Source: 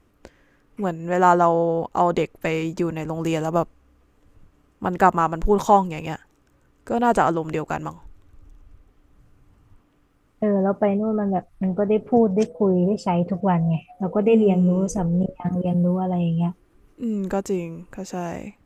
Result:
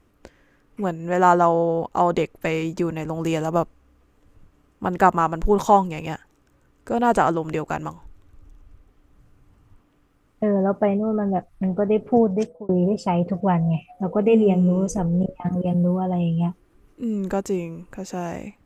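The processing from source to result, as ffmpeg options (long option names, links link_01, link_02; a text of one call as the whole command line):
ffmpeg -i in.wav -filter_complex "[0:a]asplit=2[link_01][link_02];[link_01]atrim=end=12.69,asetpts=PTS-STARTPTS,afade=type=out:start_time=12.13:duration=0.56:curve=qsin[link_03];[link_02]atrim=start=12.69,asetpts=PTS-STARTPTS,afade=type=in:duration=0.004:curve=hsin[link_04];[link_03][link_04]concat=n=2:v=0:a=1" out.wav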